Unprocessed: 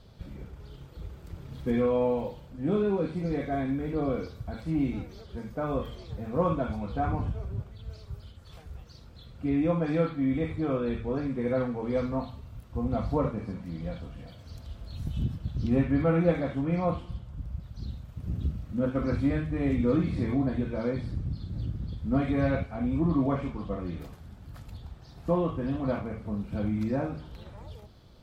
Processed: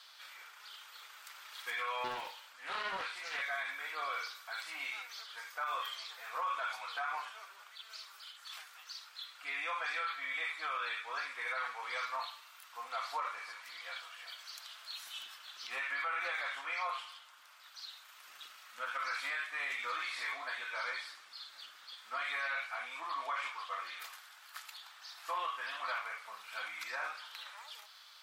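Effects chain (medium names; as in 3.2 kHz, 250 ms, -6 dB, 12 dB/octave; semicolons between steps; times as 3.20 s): high-pass 1.2 kHz 24 dB/octave; peak limiter -38.5 dBFS, peak gain reduction 11.5 dB; 2.04–3.43 s: loudspeaker Doppler distortion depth 0.32 ms; trim +10 dB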